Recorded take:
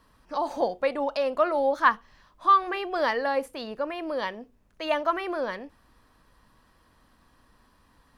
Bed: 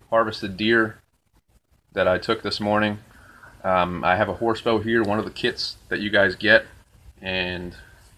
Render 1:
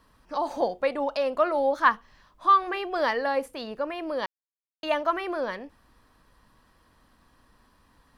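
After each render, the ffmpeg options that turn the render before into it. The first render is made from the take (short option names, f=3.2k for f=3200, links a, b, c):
-filter_complex "[0:a]asplit=3[a][b][c];[a]atrim=end=4.26,asetpts=PTS-STARTPTS,afade=t=out:st=4.256:d=0.004:c=hsin[d];[b]atrim=start=4.26:end=4.83,asetpts=PTS-STARTPTS,volume=0[e];[c]atrim=start=4.83,asetpts=PTS-STARTPTS,afade=t=in:d=0.004:c=hsin[f];[d][e][f]concat=n=3:v=0:a=1"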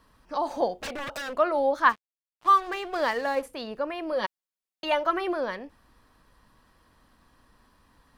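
-filter_complex "[0:a]asettb=1/sr,asplit=3[a][b][c];[a]atrim=end=0.794[d];[b]atrim=start=0.79:end=1.35,asetpts=PTS-STARTPTS,afade=t=in:d=0.004:c=qsin,afade=t=out:st=0.556:d=0.004:c=qsin,aeval=exprs='0.0355*(abs(mod(val(0)/0.0355+3,4)-2)-1)':c=same[e];[c]atrim=start=1.346[f];[d][e]acrossfade=d=0.004:c1=hsin:c2=qsin[g];[g][f]acrossfade=d=0.004:c1=qsin:c2=hsin,asettb=1/sr,asplit=3[h][i][j];[h]atrim=end=1.894[k];[i]atrim=start=1.89:end=3.43,asetpts=PTS-STARTPTS,afade=t=in:d=0.004:c=qsin,afade=t=out:st=1.536:d=0.004:c=qsin,aeval=exprs='sgn(val(0))*max(abs(val(0))-0.00841,0)':c=same[l];[j]atrim=start=3.426[m];[k][l]acrossfade=d=0.004:c1=hsin:c2=qsin[n];[n][m]acrossfade=d=0.004:c1=qsin:c2=hsin,asettb=1/sr,asplit=3[o][p][q];[o]atrim=end=4.124[r];[p]atrim=start=4.12:end=5.33,asetpts=PTS-STARTPTS,afade=t=in:d=0.004:c=qsin,afade=t=out:st=1.206:d=0.004:c=qsin,aecho=1:1:5.4:0.65,atrim=end_sample=53361[s];[q]atrim=start=5.326[t];[r][s]acrossfade=d=0.004:c1=hsin:c2=qsin[u];[u][t]acrossfade=d=0.004:c1=qsin:c2=hsin"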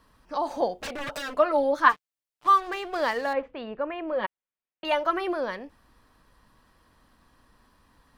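-filter_complex "[0:a]asettb=1/sr,asplit=3[a][b][c];[a]atrim=end=1.004[d];[b]atrim=start=1:end=2.47,asetpts=PTS-STARTPTS,afade=t=in:d=0.004:c=qsin,afade=t=out:st=1.466:d=0.004:c=qsin,aecho=1:1:6.8:0.65,atrim=end_sample=64827[e];[c]atrim=start=2.466[f];[d][e]acrossfade=d=0.004:c1=hsin:c2=qsin[g];[g][f]acrossfade=d=0.004:c1=qsin:c2=hsin,asettb=1/sr,asplit=3[h][i][j];[h]atrim=end=3.334[k];[i]atrim=start=3.33:end=4.85,asetpts=PTS-STARTPTS,afade=t=in:d=0.004:c=qsin,afade=t=out:st=1.516:d=0.004:c=qsin,lowpass=f=2.9k:w=0.5412,lowpass=f=2.9k:w=1.3066[l];[j]atrim=start=4.846[m];[k][l]acrossfade=d=0.004:c1=hsin:c2=qsin[n];[n][m]acrossfade=d=0.004:c1=qsin:c2=hsin"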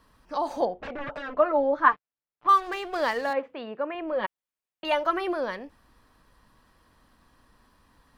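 -filter_complex "[0:a]asettb=1/sr,asplit=3[a][b][c];[a]atrim=end=0.654[d];[b]atrim=start=0.65:end=2.49,asetpts=PTS-STARTPTS,afade=t=in:d=0.004:c=qsin,afade=t=out:st=1.836:d=0.004:c=qsin,lowpass=1.9k[e];[c]atrim=start=2.486[f];[d][e]acrossfade=d=0.004:c1=hsin:c2=qsin[g];[g][f]acrossfade=d=0.004:c1=qsin:c2=hsin,asettb=1/sr,asplit=3[h][i][j];[h]atrim=end=3.304[k];[i]atrim=start=3.3:end=3.95,asetpts=PTS-STARTPTS,afade=t=in:d=0.004:c=qsin,afade=t=out:st=0.646:d=0.004:c=qsin,highpass=180[l];[j]atrim=start=3.946[m];[k][l]acrossfade=d=0.004:c1=hsin:c2=qsin[n];[n][m]acrossfade=d=0.004:c1=qsin:c2=hsin"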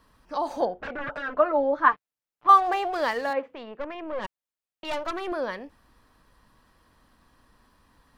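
-filter_complex "[0:a]asettb=1/sr,asplit=3[a][b][c];[a]atrim=end=0.594[d];[b]atrim=start=0.59:end=1.42,asetpts=PTS-STARTPTS,afade=t=in:d=0.004:c=qsin,afade=t=out:st=0.826:d=0.004:c=qsin,equalizer=f=1.5k:t=o:w=0.35:g=8.5[e];[c]atrim=start=1.416[f];[d][e]acrossfade=d=0.004:c1=hsin:c2=qsin[g];[g][f]acrossfade=d=0.004:c1=qsin:c2=hsin,asettb=1/sr,asplit=3[h][i][j];[h]atrim=end=2.494[k];[i]atrim=start=2.49:end=2.93,asetpts=PTS-STARTPTS,afade=t=in:d=0.004:c=qsin,afade=t=out:st=0.436:d=0.004:c=qsin,equalizer=f=730:w=2:g=15[l];[j]atrim=start=2.926[m];[k][l]acrossfade=d=0.004:c1=hsin:c2=qsin[n];[n][m]acrossfade=d=0.004:c1=qsin:c2=hsin,asettb=1/sr,asplit=3[o][p][q];[o]atrim=end=3.554[r];[p]atrim=start=3.55:end=5.32,asetpts=PTS-STARTPTS,afade=t=in:d=0.004:c=qsin,afade=t=out:st=1.766:d=0.004:c=qsin,aeval=exprs='(tanh(20*val(0)+0.65)-tanh(0.65))/20':c=same[s];[q]atrim=start=5.316[t];[r][s]acrossfade=d=0.004:c1=hsin:c2=qsin[u];[u][t]acrossfade=d=0.004:c1=qsin:c2=hsin"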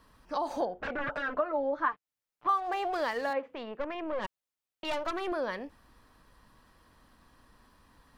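-af "acompressor=threshold=-29dB:ratio=3"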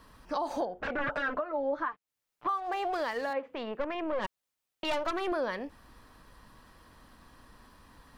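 -filter_complex "[0:a]asplit=2[a][b];[b]acompressor=threshold=-39dB:ratio=6,volume=-2dB[c];[a][c]amix=inputs=2:normalize=0,alimiter=limit=-22dB:level=0:latency=1:release=429"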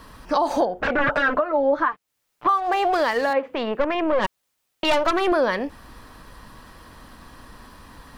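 -af "volume=11.5dB"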